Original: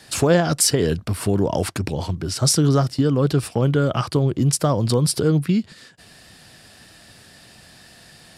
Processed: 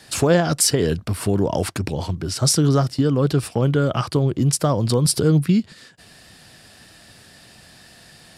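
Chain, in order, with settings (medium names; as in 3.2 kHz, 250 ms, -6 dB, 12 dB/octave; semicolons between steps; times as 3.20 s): 5.05–5.60 s: tone controls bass +3 dB, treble +3 dB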